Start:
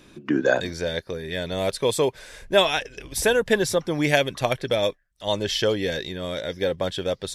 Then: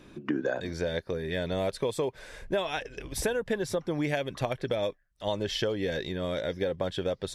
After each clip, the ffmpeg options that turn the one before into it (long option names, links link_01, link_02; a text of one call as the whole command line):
ffmpeg -i in.wav -af "highshelf=frequency=2700:gain=-8.5,acompressor=threshold=-26dB:ratio=6" out.wav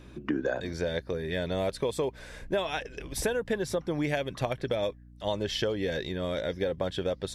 ffmpeg -i in.wav -af "aeval=exprs='val(0)+0.00316*(sin(2*PI*60*n/s)+sin(2*PI*2*60*n/s)/2+sin(2*PI*3*60*n/s)/3+sin(2*PI*4*60*n/s)/4+sin(2*PI*5*60*n/s)/5)':channel_layout=same" out.wav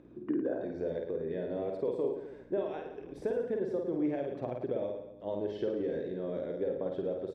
ffmpeg -i in.wav -filter_complex "[0:a]acompressor=mode=upward:threshold=-46dB:ratio=2.5,bandpass=frequency=360:width_type=q:width=1.4:csg=0,asplit=2[link_01][link_02];[link_02]aecho=0:1:50|107.5|173.6|249.7|337.1:0.631|0.398|0.251|0.158|0.1[link_03];[link_01][link_03]amix=inputs=2:normalize=0,volume=-2dB" out.wav